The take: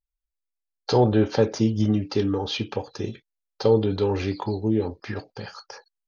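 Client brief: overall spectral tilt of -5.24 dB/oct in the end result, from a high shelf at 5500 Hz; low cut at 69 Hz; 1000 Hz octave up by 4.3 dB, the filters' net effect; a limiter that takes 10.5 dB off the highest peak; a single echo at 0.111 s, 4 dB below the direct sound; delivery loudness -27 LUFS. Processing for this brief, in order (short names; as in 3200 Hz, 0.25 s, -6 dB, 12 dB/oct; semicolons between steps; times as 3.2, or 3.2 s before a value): HPF 69 Hz; bell 1000 Hz +5.5 dB; high shelf 5500 Hz +4.5 dB; limiter -16.5 dBFS; echo 0.111 s -4 dB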